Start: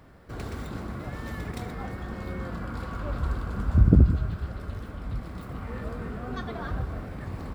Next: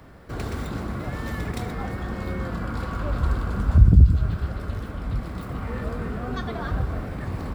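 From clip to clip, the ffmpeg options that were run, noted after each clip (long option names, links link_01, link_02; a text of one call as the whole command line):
ffmpeg -i in.wav -filter_complex "[0:a]acrossover=split=150|3000[link_01][link_02][link_03];[link_02]acompressor=threshold=-33dB:ratio=6[link_04];[link_01][link_04][link_03]amix=inputs=3:normalize=0,volume=5.5dB" out.wav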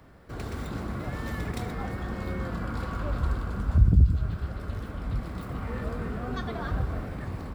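ffmpeg -i in.wav -af "dynaudnorm=framelen=240:gausssize=5:maxgain=3dB,volume=-6dB" out.wav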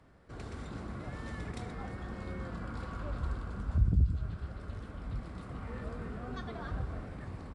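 ffmpeg -i in.wav -af "aresample=22050,aresample=44100,volume=-8dB" out.wav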